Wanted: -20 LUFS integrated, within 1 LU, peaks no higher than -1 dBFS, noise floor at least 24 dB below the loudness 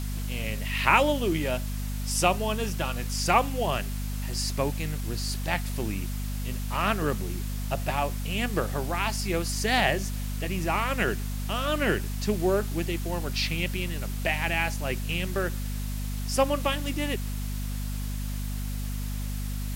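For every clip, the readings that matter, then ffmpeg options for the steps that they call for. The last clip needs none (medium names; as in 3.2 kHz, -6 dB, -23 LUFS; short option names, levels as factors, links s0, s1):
hum 50 Hz; highest harmonic 250 Hz; hum level -29 dBFS; noise floor -31 dBFS; noise floor target -53 dBFS; loudness -28.5 LUFS; peak level -4.5 dBFS; loudness target -20.0 LUFS
-> -af "bandreject=f=50:t=h:w=4,bandreject=f=100:t=h:w=4,bandreject=f=150:t=h:w=4,bandreject=f=200:t=h:w=4,bandreject=f=250:t=h:w=4"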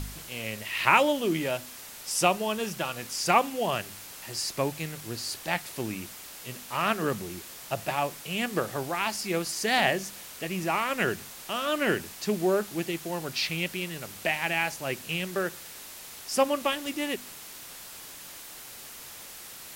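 hum not found; noise floor -44 dBFS; noise floor target -53 dBFS
-> -af "afftdn=nr=9:nf=-44"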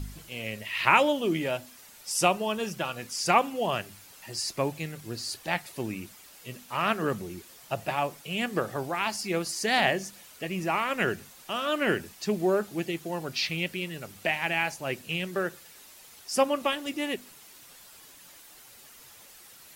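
noise floor -52 dBFS; noise floor target -53 dBFS
-> -af "afftdn=nr=6:nf=-52"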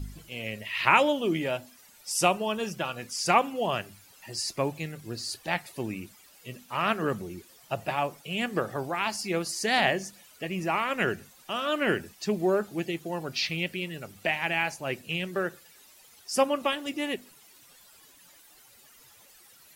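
noise floor -56 dBFS; loudness -29.0 LUFS; peak level -5.0 dBFS; loudness target -20.0 LUFS
-> -af "volume=2.82,alimiter=limit=0.891:level=0:latency=1"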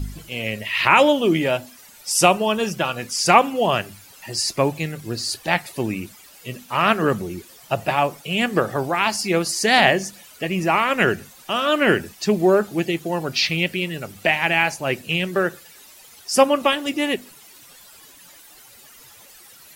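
loudness -20.5 LUFS; peak level -1.0 dBFS; noise floor -47 dBFS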